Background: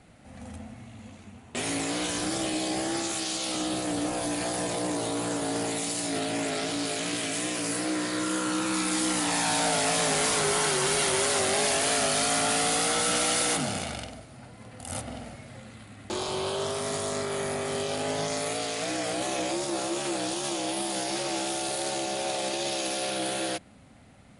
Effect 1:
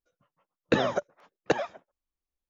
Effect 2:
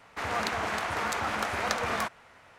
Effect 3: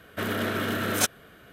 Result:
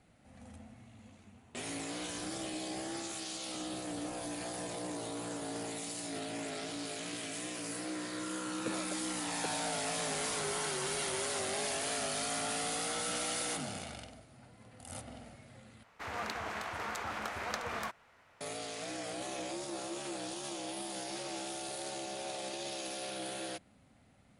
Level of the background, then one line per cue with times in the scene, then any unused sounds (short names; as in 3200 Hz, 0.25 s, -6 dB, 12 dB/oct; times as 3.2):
background -10.5 dB
7.94 add 1 -17.5 dB
15.83 replace with 2 -8.5 dB
not used: 3